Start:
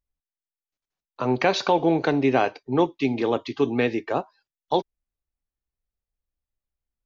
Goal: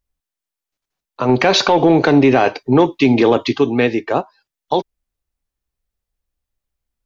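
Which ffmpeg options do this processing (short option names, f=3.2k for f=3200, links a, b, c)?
-filter_complex "[0:a]asettb=1/sr,asplit=3[a][b][c];[a]atrim=end=1.294[d];[b]atrim=start=1.29:end=3.58,asetpts=PTS-STARTPTS,afade=t=in:d=0.004:c=qsin,afade=t=out:st=2.286:d=0.004:c=qsin,acontrast=67[e];[c]atrim=start=3.576[f];[d][e]acrossfade=d=0.004:c1=hsin:c2=qsin[g];[g][f]acrossfade=d=0.004:c1=qsin:c2=hsin,alimiter=level_in=10dB:limit=-1dB:release=50:level=0:latency=1,volume=-2.5dB"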